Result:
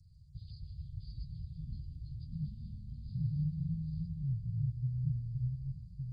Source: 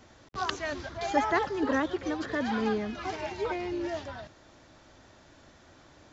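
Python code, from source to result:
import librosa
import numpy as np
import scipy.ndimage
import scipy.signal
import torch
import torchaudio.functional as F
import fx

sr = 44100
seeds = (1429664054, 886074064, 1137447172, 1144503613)

y = fx.freq_compress(x, sr, knee_hz=2100.0, ratio=1.5)
y = fx.echo_pitch(y, sr, ms=145, semitones=-5, count=3, db_per_echo=-3.0)
y = scipy.signal.sosfilt(scipy.signal.cheby1(5, 1.0, [150.0, 5300.0], 'bandstop', fs=sr, output='sos'), y)
y = y * librosa.db_to_amplitude(3.0)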